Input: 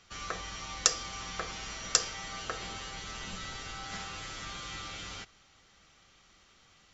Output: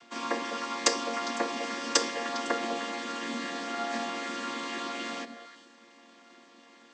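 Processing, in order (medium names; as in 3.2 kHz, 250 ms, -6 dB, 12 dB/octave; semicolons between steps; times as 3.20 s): vocoder on a held chord minor triad, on A#3; repeats whose band climbs or falls 101 ms, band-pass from 210 Hz, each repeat 1.4 oct, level -4 dB; trim +5.5 dB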